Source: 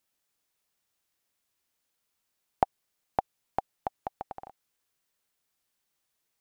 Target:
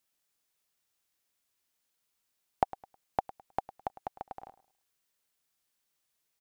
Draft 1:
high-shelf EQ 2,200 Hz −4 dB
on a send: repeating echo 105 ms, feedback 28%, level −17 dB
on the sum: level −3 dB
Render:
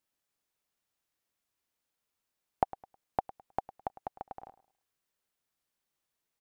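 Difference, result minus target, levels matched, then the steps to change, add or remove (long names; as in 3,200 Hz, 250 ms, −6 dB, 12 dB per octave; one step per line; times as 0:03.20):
4,000 Hz band −4.5 dB
change: high-shelf EQ 2,200 Hz +3 dB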